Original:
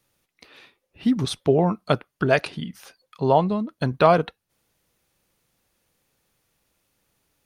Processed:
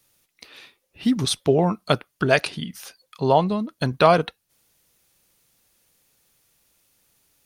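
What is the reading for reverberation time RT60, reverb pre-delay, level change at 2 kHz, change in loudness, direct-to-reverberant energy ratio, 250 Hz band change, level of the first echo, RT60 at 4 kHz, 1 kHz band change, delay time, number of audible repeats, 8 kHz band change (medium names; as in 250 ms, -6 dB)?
no reverb, no reverb, +2.5 dB, +0.5 dB, no reverb, 0.0 dB, no echo, no reverb, +1.0 dB, no echo, no echo, no reading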